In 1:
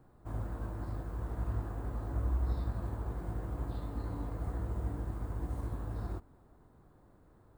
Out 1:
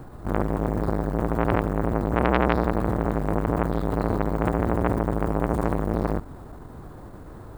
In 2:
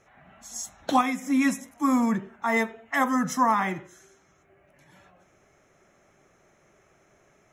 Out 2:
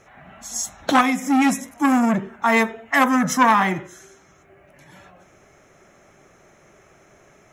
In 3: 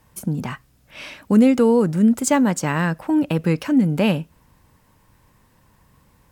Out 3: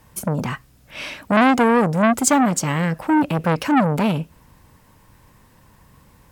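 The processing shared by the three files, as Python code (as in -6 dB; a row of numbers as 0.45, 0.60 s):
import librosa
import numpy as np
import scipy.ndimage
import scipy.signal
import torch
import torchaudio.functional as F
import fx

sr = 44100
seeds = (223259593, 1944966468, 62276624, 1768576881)

y = fx.transformer_sat(x, sr, knee_hz=1300.0)
y = librosa.util.normalize(y) * 10.0 ** (-1.5 / 20.0)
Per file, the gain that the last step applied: +21.5, +8.5, +5.0 dB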